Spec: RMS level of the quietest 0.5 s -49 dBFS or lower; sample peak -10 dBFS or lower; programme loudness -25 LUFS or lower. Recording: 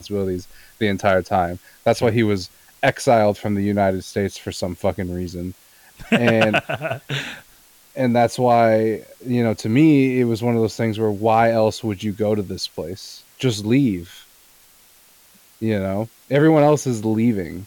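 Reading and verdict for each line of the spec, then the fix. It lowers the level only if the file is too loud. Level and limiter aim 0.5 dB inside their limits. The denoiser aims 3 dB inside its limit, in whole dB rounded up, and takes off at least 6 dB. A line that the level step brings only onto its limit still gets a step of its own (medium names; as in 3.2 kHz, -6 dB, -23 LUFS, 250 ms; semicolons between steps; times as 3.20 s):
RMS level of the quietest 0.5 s -52 dBFS: pass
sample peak -5.5 dBFS: fail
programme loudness -19.5 LUFS: fail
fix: trim -6 dB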